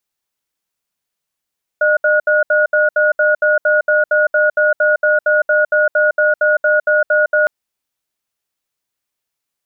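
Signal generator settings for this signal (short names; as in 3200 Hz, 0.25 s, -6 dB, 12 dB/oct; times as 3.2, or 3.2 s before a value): cadence 607 Hz, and 1450 Hz, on 0.16 s, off 0.07 s, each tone -12.5 dBFS 5.66 s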